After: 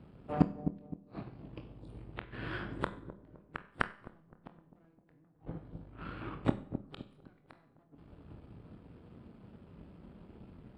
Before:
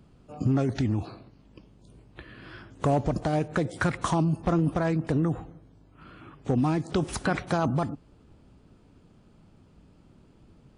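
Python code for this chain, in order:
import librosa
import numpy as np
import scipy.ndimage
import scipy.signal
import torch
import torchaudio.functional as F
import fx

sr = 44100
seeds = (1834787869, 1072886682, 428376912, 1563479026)

y = np.where(x < 0.0, 10.0 ** (-12.0 / 20.0) * x, x)
y = scipy.signal.sosfilt(scipy.signal.butter(2, 44.0, 'highpass', fs=sr, output='sos'), y)
y = fx.gate_flip(y, sr, shuts_db=-28.0, range_db=-42)
y = np.convolve(y, np.full(7, 1.0 / 7))[:len(y)]
y = fx.doubler(y, sr, ms=25.0, db=-9.5)
y = fx.echo_wet_lowpass(y, sr, ms=258, feedback_pct=50, hz=510.0, wet_db=-5)
y = fx.rev_schroeder(y, sr, rt60_s=0.62, comb_ms=31, drr_db=8.5)
y = fx.upward_expand(y, sr, threshold_db=-59.0, expansion=1.5)
y = y * librosa.db_to_amplitude(15.0)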